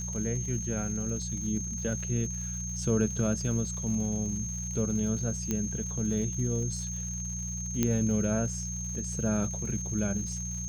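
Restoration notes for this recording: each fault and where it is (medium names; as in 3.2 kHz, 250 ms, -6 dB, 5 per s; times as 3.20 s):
crackle 180 per s -40 dBFS
hum 60 Hz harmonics 3 -37 dBFS
whine 6.4 kHz -36 dBFS
5.51 s: pop -16 dBFS
7.83 s: pop -12 dBFS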